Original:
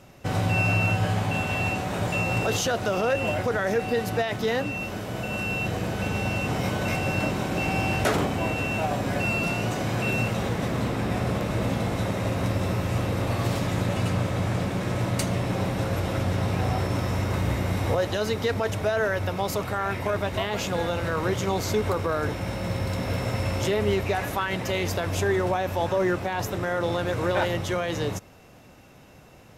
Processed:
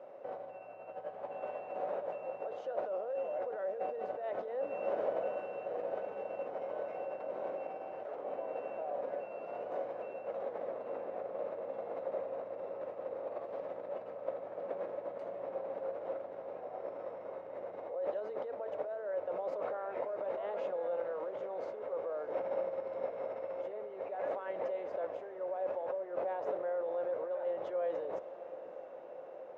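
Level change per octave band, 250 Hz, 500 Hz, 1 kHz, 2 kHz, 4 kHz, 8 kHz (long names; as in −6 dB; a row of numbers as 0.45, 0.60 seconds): −24.5 dB, −8.0 dB, −13.0 dB, −24.5 dB, below −30 dB, below −40 dB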